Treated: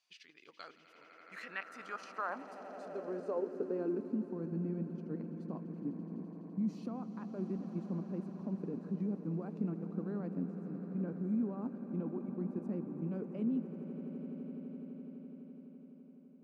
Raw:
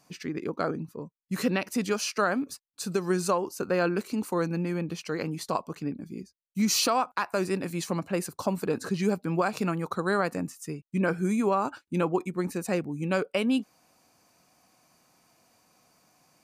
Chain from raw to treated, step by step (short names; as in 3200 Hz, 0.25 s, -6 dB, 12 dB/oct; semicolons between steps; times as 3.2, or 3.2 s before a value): level quantiser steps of 10 dB; swelling echo 84 ms, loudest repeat 8, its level -15.5 dB; band-pass sweep 3300 Hz -> 230 Hz, 0.67–4.3; gain -1 dB